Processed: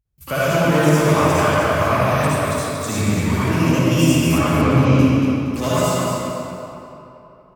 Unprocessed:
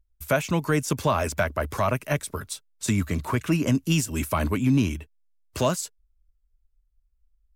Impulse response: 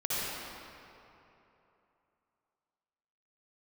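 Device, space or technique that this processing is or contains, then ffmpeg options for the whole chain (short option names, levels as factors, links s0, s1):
shimmer-style reverb: -filter_complex "[0:a]asplit=2[s0][s1];[s1]asetrate=88200,aresample=44100,atempo=0.5,volume=0.282[s2];[s0][s2]amix=inputs=2:normalize=0[s3];[1:a]atrim=start_sample=2205[s4];[s3][s4]afir=irnorm=-1:irlink=0,asettb=1/sr,asplit=3[s5][s6][s7];[s5]atrim=end=4.384[s8];[s6]atrim=start=4.38:end=4.99,asetpts=PTS-STARTPTS,afade=t=in:d=0.004:c=qsin,afade=t=out:st=0.606:d=0.004:c=qsin,lowpass=4900[s9];[s7]atrim=start=4.986[s10];[s8][s9]acrossfade=d=0.004:c1=hsin:c2=qsin[s11];[s11][s10]acrossfade=d=0.004:c1=qsin:c2=hsin,highpass=59,aecho=1:1:233|466|699|932:0.473|0.156|0.0515|0.017,volume=0.891"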